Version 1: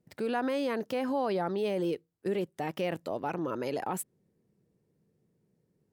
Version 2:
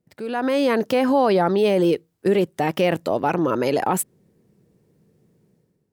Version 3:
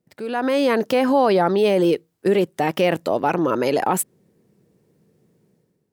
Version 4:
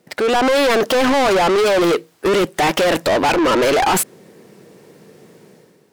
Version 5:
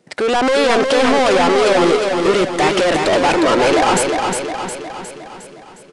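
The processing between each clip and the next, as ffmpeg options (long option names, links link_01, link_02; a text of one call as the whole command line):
ffmpeg -i in.wav -af "dynaudnorm=framelen=100:gausssize=9:maxgain=12.5dB" out.wav
ffmpeg -i in.wav -af "lowshelf=frequency=110:gain=-8,volume=1.5dB" out.wav
ffmpeg -i in.wav -filter_complex "[0:a]asplit=2[link_01][link_02];[link_02]highpass=frequency=720:poles=1,volume=28dB,asoftclip=type=tanh:threshold=-6dB[link_03];[link_01][link_03]amix=inputs=2:normalize=0,lowpass=frequency=5400:poles=1,volume=-6dB,asoftclip=type=tanh:threshold=-14.5dB,volume=2dB" out.wav
ffmpeg -i in.wav -filter_complex "[0:a]asplit=2[link_01][link_02];[link_02]aecho=0:1:359|718|1077|1436|1795|2154|2513:0.596|0.322|0.174|0.0938|0.0506|0.0274|0.0148[link_03];[link_01][link_03]amix=inputs=2:normalize=0,aresample=22050,aresample=44100" out.wav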